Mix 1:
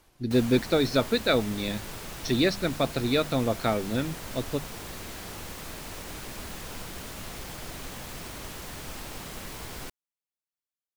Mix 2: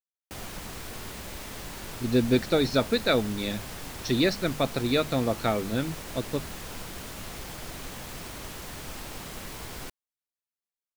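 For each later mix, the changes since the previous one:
speech: entry +1.80 s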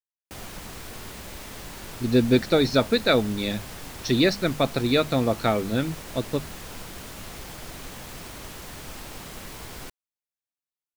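speech +3.5 dB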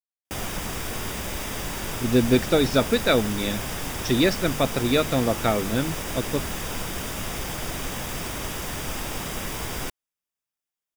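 background +8.5 dB; master: add Butterworth band-stop 4200 Hz, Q 7.8

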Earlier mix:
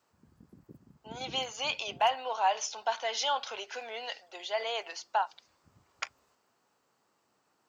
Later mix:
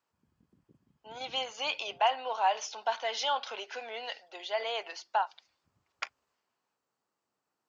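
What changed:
speech: add LPF 5300 Hz 12 dB/oct; background -11.5 dB

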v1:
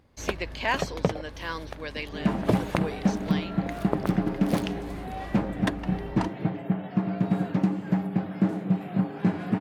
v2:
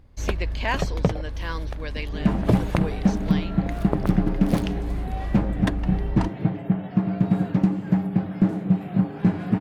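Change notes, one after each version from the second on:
master: remove HPF 240 Hz 6 dB/oct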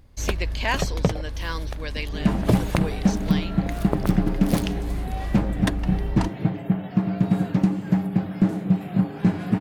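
master: add high shelf 4000 Hz +9.5 dB

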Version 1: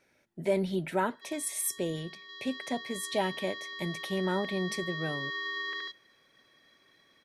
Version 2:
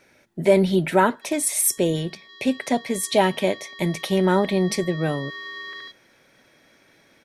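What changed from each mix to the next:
speech +11.5 dB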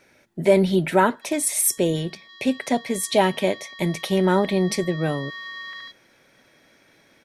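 background: add steep high-pass 590 Hz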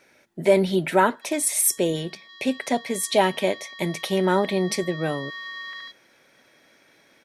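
master: add low shelf 160 Hz -9.5 dB

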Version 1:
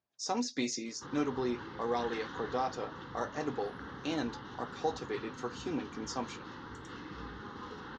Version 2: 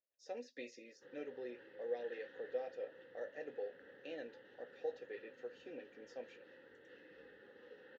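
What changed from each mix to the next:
master: add vowel filter e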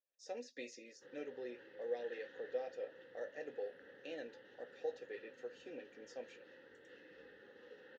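master: remove air absorption 94 m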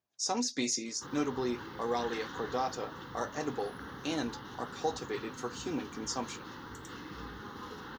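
master: remove vowel filter e

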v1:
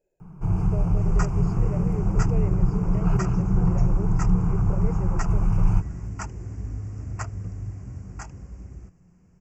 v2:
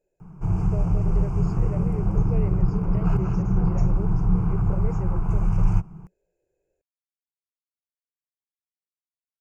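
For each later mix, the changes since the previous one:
second sound: muted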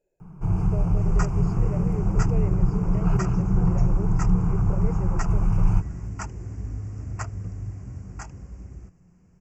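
second sound: unmuted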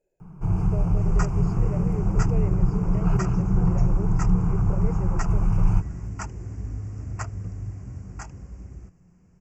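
none

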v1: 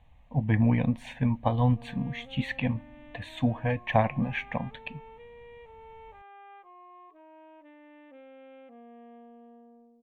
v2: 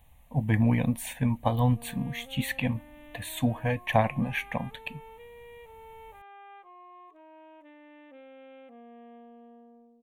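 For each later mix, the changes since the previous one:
speech: send -7.0 dB; master: remove air absorption 170 m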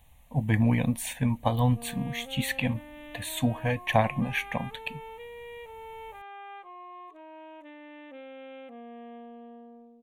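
background +5.0 dB; master: add bell 5700 Hz +5 dB 1.9 oct

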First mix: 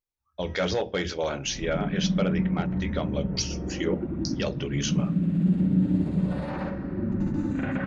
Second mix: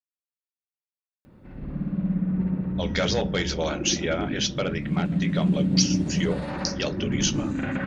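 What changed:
speech: entry +2.40 s; master: add high shelf 2600 Hz +8 dB

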